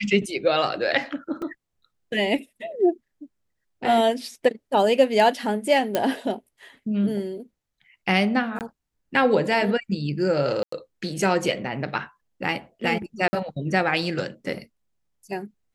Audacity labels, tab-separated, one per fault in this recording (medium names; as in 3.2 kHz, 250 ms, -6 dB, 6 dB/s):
1.420000	1.420000	dropout 3.4 ms
5.950000	5.950000	pop -8 dBFS
8.590000	8.610000	dropout 18 ms
10.630000	10.720000	dropout 94 ms
13.280000	13.330000	dropout 50 ms